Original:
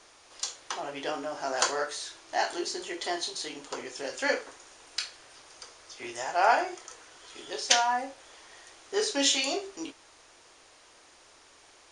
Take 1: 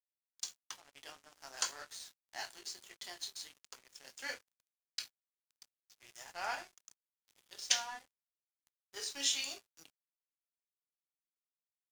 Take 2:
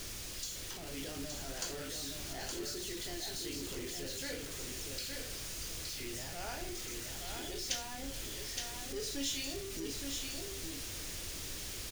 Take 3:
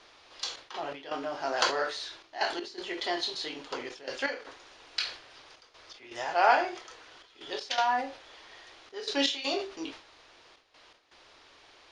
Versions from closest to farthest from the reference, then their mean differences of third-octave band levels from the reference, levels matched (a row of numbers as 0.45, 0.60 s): 3, 1, 2; 4.0, 12.5, 17.0 dB